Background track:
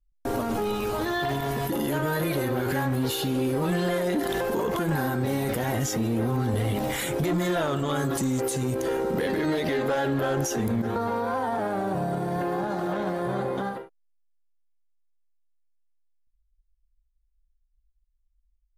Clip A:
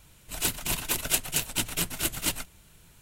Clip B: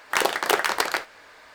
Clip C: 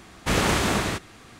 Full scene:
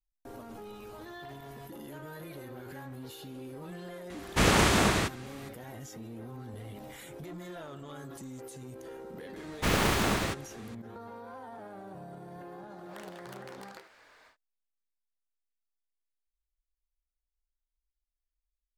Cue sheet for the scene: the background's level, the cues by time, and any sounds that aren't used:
background track -18 dB
4.10 s: add C -1 dB
9.36 s: add C -4.5 dB + tracing distortion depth 0.086 ms
12.83 s: add B -10 dB, fades 0.10 s + compression, threshold -37 dBFS
not used: A

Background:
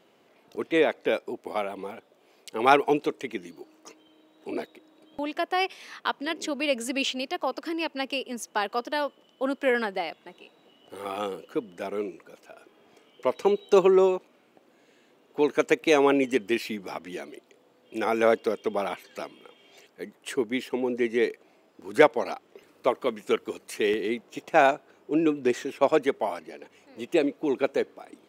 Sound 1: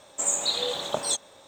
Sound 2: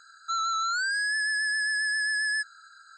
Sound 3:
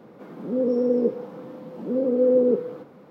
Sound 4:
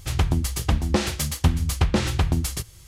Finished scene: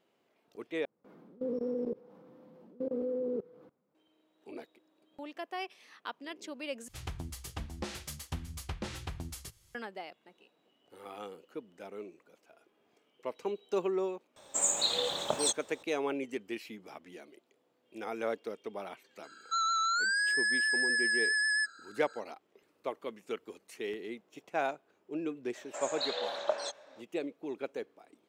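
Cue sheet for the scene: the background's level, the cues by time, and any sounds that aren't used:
background -13 dB
0.85 s: replace with 3 -10.5 dB + level held to a coarse grid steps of 23 dB
6.88 s: replace with 4 -15 dB + bass shelf 360 Hz -5 dB
14.36 s: add 1 -3.5 dB
19.23 s: add 2 -2 dB
25.55 s: add 1 -6.5 dB + cabinet simulation 480–5300 Hz, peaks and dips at 610 Hz +9 dB, 1.6 kHz +7 dB, 3.4 kHz -7 dB

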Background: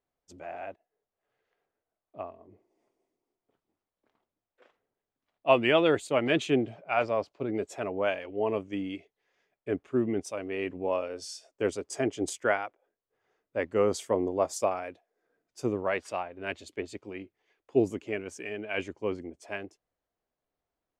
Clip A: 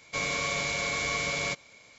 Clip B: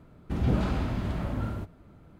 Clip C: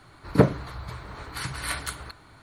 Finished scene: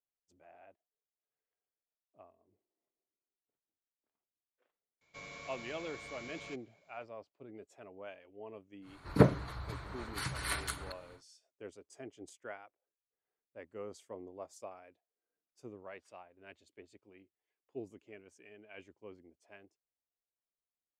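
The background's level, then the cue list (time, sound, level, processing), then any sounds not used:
background -19.5 dB
5.01 s: add A -17 dB + treble shelf 4.5 kHz -8.5 dB
8.81 s: add C -5.5 dB, fades 0.10 s + resampled via 32 kHz
not used: B

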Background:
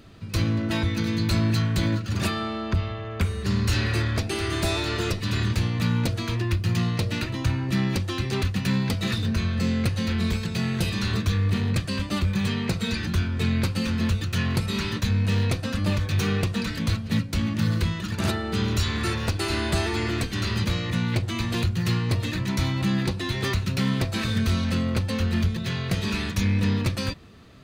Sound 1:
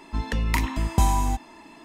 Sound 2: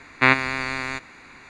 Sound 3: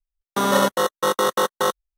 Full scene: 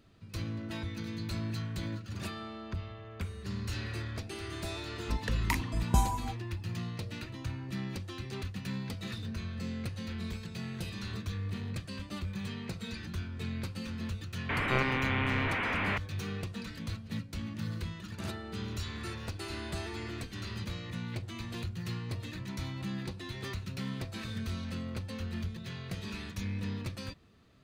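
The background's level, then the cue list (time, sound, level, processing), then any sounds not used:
background -13.5 dB
4.96 s: add 1 -5.5 dB + reverb removal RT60 1.6 s
14.49 s: add 2 -8 dB + one-bit delta coder 16 kbps, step -18 dBFS
not used: 3

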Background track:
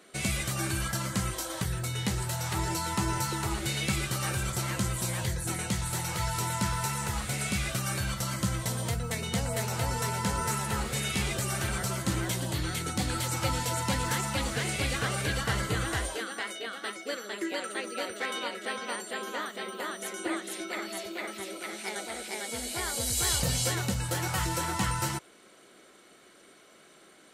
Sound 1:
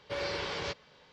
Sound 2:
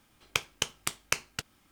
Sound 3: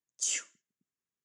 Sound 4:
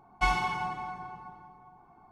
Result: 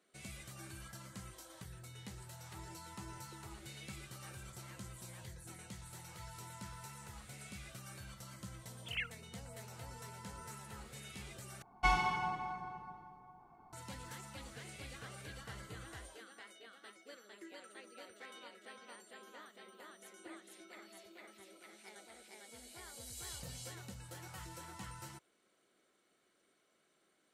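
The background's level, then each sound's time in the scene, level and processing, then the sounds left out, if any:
background track -19.5 dB
8.64 s: add 3 -9 dB + formants replaced by sine waves
11.62 s: replace with 4 -4 dB
not used: 1, 2

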